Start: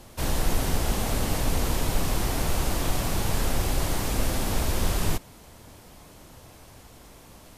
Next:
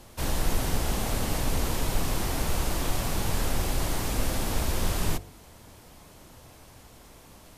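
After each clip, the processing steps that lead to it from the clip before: de-hum 48.54 Hz, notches 16; trim -1.5 dB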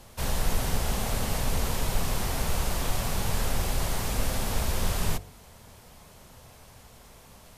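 peaking EQ 310 Hz -12 dB 0.27 oct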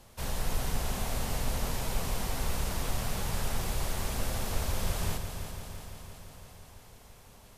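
multi-head delay 169 ms, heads first and second, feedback 70%, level -12 dB; trim -5.5 dB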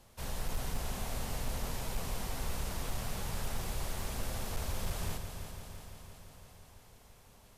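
hard clipper -22 dBFS, distortion -26 dB; trim -5 dB

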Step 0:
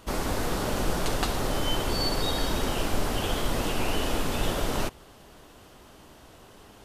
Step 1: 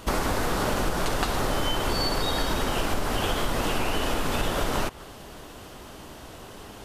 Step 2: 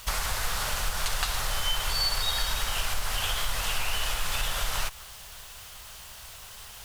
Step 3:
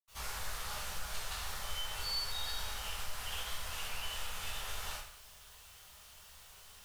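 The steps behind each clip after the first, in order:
dynamic bell 1.3 kHz, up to +4 dB, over -46 dBFS, Q 0.74; compression, threshold -30 dBFS, peak gain reduction 10.5 dB; trim +8 dB
bit crusher 8-bit; amplifier tone stack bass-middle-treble 10-0-10; trim +4 dB
reverberation RT60 0.60 s, pre-delay 77 ms; trim +2 dB

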